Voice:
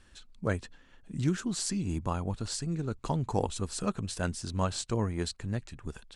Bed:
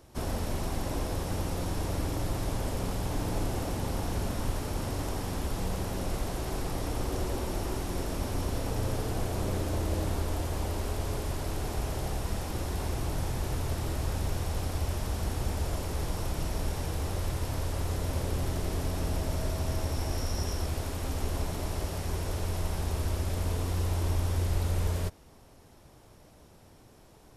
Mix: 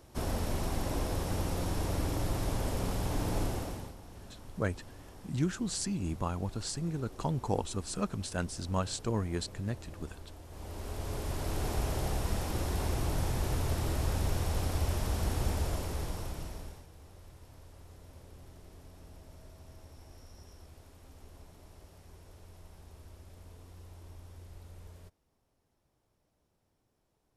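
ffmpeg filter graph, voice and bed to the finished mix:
-filter_complex "[0:a]adelay=4150,volume=-2dB[a];[1:a]volume=17dB,afade=t=out:st=3.42:d=0.53:silence=0.141254,afade=t=in:st=10.47:d=1.19:silence=0.125893,afade=t=out:st=15.48:d=1.38:silence=0.0841395[b];[a][b]amix=inputs=2:normalize=0"

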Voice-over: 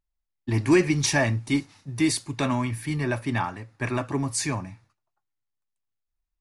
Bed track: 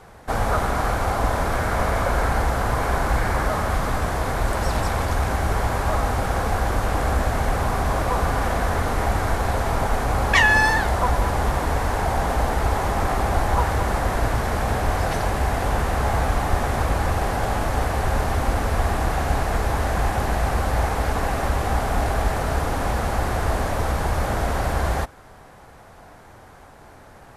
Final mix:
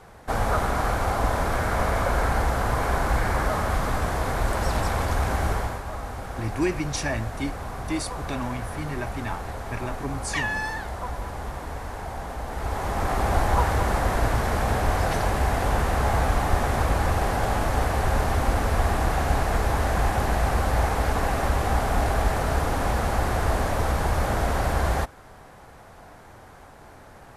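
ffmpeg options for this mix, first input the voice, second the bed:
-filter_complex "[0:a]adelay=5900,volume=-6dB[a];[1:a]volume=8.5dB,afade=t=out:st=5.47:d=0.35:silence=0.334965,afade=t=in:st=12.45:d=0.89:silence=0.298538[b];[a][b]amix=inputs=2:normalize=0"

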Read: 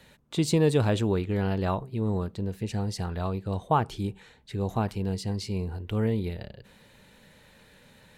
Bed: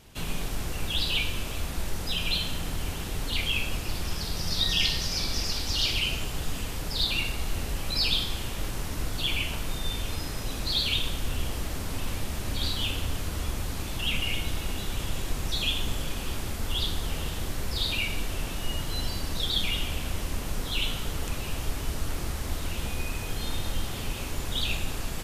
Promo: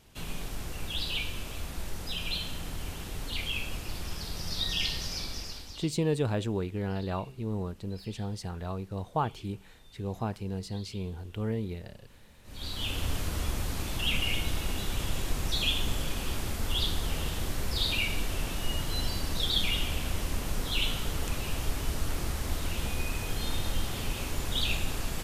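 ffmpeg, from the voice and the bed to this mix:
-filter_complex "[0:a]adelay=5450,volume=-5.5dB[a];[1:a]volume=20dB,afade=t=out:st=5.09:d=0.81:silence=0.0944061,afade=t=in:st=12.43:d=0.66:silence=0.0530884[b];[a][b]amix=inputs=2:normalize=0"

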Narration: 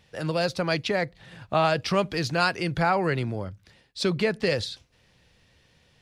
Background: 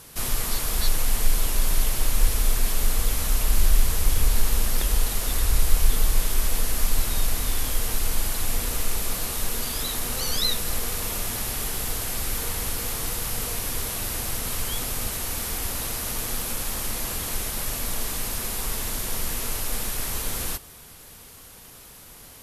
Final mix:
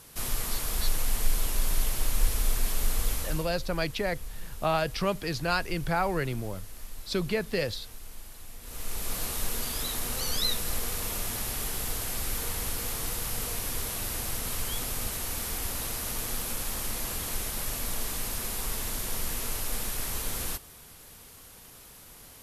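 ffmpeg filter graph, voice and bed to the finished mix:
-filter_complex "[0:a]adelay=3100,volume=-4.5dB[a];[1:a]volume=11dB,afade=t=out:st=3.12:d=0.4:silence=0.177828,afade=t=in:st=8.61:d=0.6:silence=0.158489[b];[a][b]amix=inputs=2:normalize=0"

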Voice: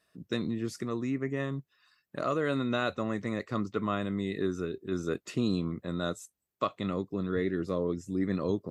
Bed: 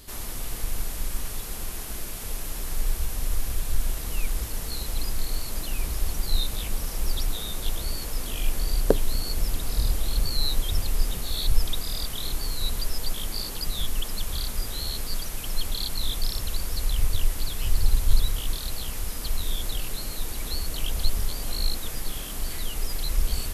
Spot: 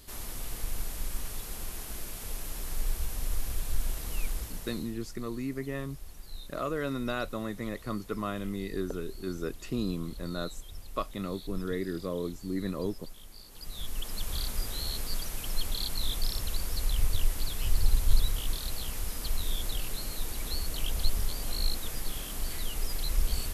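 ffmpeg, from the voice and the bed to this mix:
-filter_complex "[0:a]adelay=4350,volume=-3dB[a];[1:a]volume=10.5dB,afade=t=out:st=4.25:d=0.73:silence=0.199526,afade=t=in:st=13.48:d=0.88:silence=0.16788[b];[a][b]amix=inputs=2:normalize=0"

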